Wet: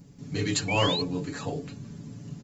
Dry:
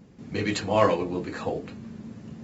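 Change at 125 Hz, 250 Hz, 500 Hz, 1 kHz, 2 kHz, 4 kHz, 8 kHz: +3.0 dB, -1.5 dB, -6.0 dB, -5.0 dB, +1.0 dB, +8.0 dB, n/a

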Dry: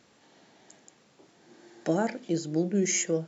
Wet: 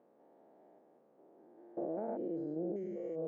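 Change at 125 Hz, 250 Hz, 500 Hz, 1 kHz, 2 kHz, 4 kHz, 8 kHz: -16.5 dB, -11.0 dB, -8.0 dB, -10.5 dB, under -25 dB, under -40 dB, n/a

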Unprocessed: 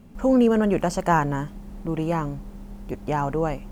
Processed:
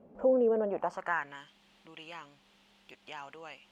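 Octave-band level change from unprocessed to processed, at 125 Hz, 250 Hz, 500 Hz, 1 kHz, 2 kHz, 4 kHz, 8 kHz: -27.0, -17.0, -6.5, -13.0, -6.5, -8.0, -21.5 dB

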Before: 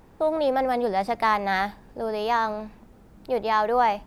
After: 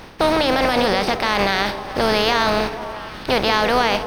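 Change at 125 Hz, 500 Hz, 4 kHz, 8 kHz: +13.0 dB, +5.5 dB, +17.0 dB, n/a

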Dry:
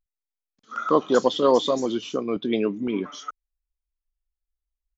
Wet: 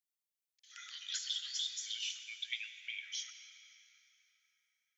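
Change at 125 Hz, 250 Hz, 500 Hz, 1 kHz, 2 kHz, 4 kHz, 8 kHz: under -40 dB, under -40 dB, under -40 dB, under -35 dB, -7.0 dB, -4.0 dB, n/a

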